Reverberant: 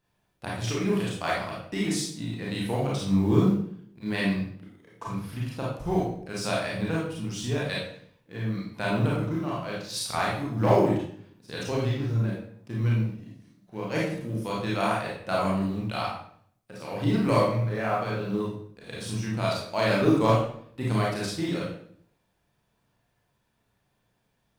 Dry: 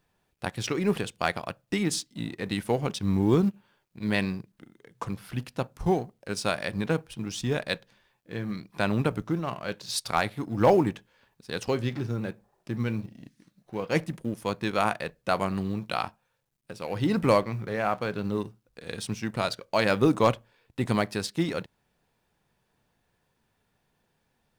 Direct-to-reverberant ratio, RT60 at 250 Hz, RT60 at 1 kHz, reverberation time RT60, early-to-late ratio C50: −5.5 dB, 0.80 s, 0.55 s, 0.60 s, 1.0 dB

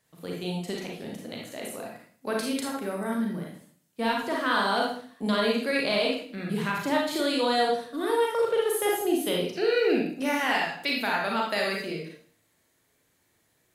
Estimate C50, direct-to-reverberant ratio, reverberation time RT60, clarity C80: 1.5 dB, −2.0 dB, 0.50 s, 7.5 dB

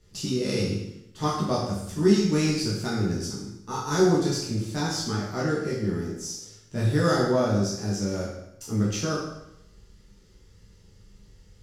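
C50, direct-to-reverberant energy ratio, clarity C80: 1.5 dB, −7.0 dB, 5.0 dB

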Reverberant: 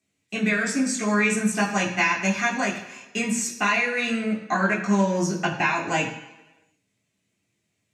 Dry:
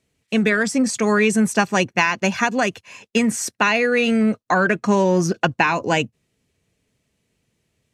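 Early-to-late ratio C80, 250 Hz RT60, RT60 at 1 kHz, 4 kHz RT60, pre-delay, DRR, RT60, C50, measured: 9.5 dB, 0.95 s, 1.1 s, 1.0 s, 11 ms, −4.0 dB, 1.1 s, 7.5 dB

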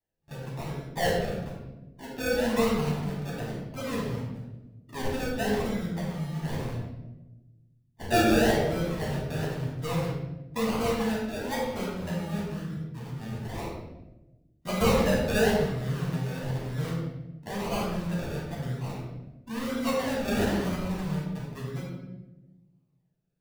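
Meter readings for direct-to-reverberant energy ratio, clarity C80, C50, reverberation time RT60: −6.0 dB, 3.5 dB, 0.5 dB, 1.1 s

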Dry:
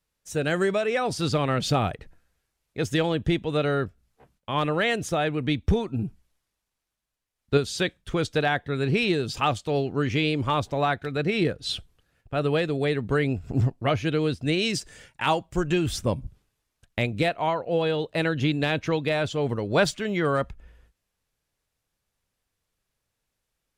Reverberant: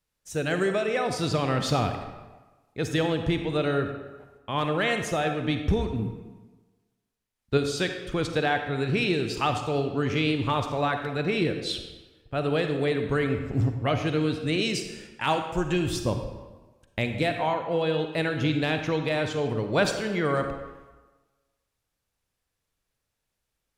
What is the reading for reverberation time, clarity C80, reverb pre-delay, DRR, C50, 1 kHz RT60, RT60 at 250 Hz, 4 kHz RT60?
1.3 s, 8.0 dB, 37 ms, 6.0 dB, 6.5 dB, 1.3 s, 1.2 s, 0.85 s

